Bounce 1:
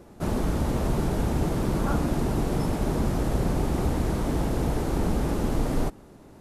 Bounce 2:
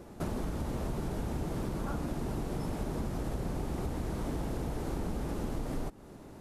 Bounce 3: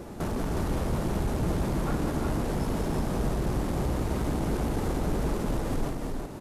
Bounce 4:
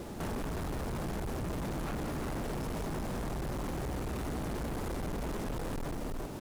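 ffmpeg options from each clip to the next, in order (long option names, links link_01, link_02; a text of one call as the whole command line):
ffmpeg -i in.wav -af "acompressor=threshold=-33dB:ratio=4" out.wav
ffmpeg -i in.wav -af "asoftclip=type=tanh:threshold=-34.5dB,aecho=1:1:191|311|363:0.473|0.398|0.562,volume=8.5dB" out.wav
ffmpeg -i in.wav -af "asoftclip=type=hard:threshold=-33.5dB,acrusher=bits=7:mix=0:aa=0.5,volume=-1.5dB" out.wav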